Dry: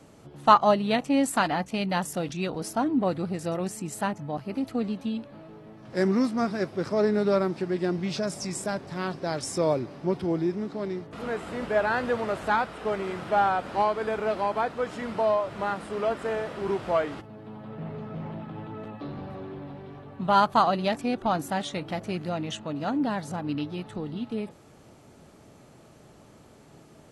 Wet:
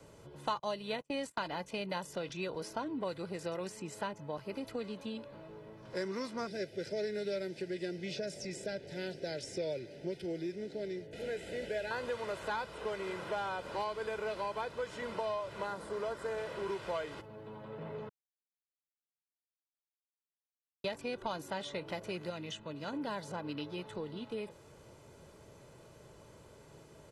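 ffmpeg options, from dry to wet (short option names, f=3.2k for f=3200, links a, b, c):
-filter_complex "[0:a]asettb=1/sr,asplit=3[a][b][c];[a]atrim=end=0.594[d];[b]atrim=start=0.59:end=1.43,asetpts=PTS-STARTPTS,afade=t=in:d=0.004:c=qsin,afade=t=out:st=0.836:d=0.004:c=qsin,agate=range=-30dB:threshold=-30dB:ratio=16:release=100:detection=peak[e];[c]atrim=start=1.426[f];[d][e]acrossfade=d=0.004:c1=hsin:c2=qsin[g];[g][f]acrossfade=d=0.004:c1=qsin:c2=hsin,asettb=1/sr,asplit=3[h][i][j];[h]atrim=end=6.474[k];[i]atrim=start=6.47:end=11.91,asetpts=PTS-STARTPTS,afade=t=in:d=0.004:c=qsin,afade=t=out:st=5.436:d=0.004:c=qsin,asuperstop=centerf=1100:order=4:qfactor=1.1[l];[j]atrim=start=11.906[m];[k][l]acrossfade=d=0.004:c1=hsin:c2=qsin[n];[n][m]acrossfade=d=0.004:c1=qsin:c2=hsin,asettb=1/sr,asplit=3[o][p][q];[o]atrim=end=15.664[r];[p]atrim=start=15.66:end=16.38,asetpts=PTS-STARTPTS,afade=t=in:d=0.004:c=qsin,afade=t=out:st=0.716:d=0.004:c=qsin,equalizer=f=2.7k:t=o:w=0.76:g=-7.5[s];[q]atrim=start=16.376[t];[r][s]acrossfade=d=0.004:c1=hsin:c2=qsin[u];[u][t]acrossfade=d=0.004:c1=qsin:c2=hsin,asettb=1/sr,asplit=3[v][w][x];[v]atrim=end=22.304[y];[w]atrim=start=22.3:end=22.93,asetpts=PTS-STARTPTS,afade=t=in:d=0.004:c=qsin,afade=t=out:st=0.626:d=0.004:c=qsin,equalizer=f=710:w=0.55:g=-7.5[z];[x]atrim=start=22.926[aa];[y][z]acrossfade=d=0.004:c1=hsin:c2=qsin[ab];[ab][aa]acrossfade=d=0.004:c1=qsin:c2=hsin,asplit=3[ac][ad][ae];[ac]atrim=end=18.09,asetpts=PTS-STARTPTS,afade=t=out:st=18.086:d=0.004:c=hsin[af];[ad]atrim=start=18.09:end=20.84,asetpts=PTS-STARTPTS,volume=0[ag];[ae]atrim=start=20.84,asetpts=PTS-STARTPTS,afade=t=in:d=0.004:c=hsin[ah];[af][ag][ah]concat=n=3:v=0:a=1,aecho=1:1:2:0.52,acrossover=split=190|1200|2600|5600[ai][aj][ak][al][am];[ai]acompressor=threshold=-52dB:ratio=4[an];[aj]acompressor=threshold=-33dB:ratio=4[ao];[ak]acompressor=threshold=-44dB:ratio=4[ap];[al]acompressor=threshold=-43dB:ratio=4[aq];[am]acompressor=threshold=-55dB:ratio=4[ar];[an][ao][ap][aq][ar]amix=inputs=5:normalize=0,volume=-4dB"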